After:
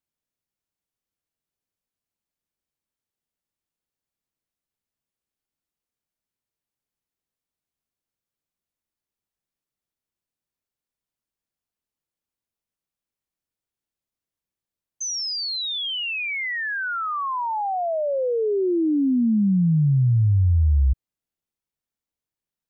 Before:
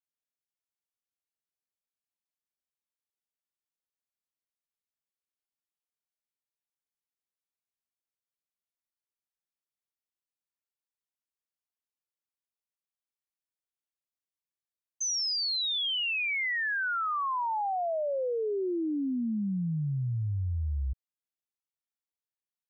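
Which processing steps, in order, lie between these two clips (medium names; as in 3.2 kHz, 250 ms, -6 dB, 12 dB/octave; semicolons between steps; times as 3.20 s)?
bass shelf 450 Hz +11 dB; trim +2.5 dB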